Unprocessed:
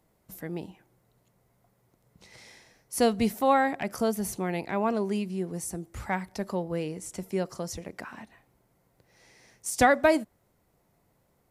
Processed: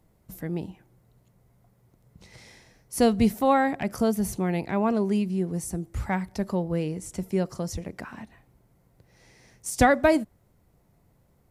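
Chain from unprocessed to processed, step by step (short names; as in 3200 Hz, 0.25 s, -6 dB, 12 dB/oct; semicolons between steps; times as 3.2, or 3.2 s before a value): low shelf 210 Hz +11 dB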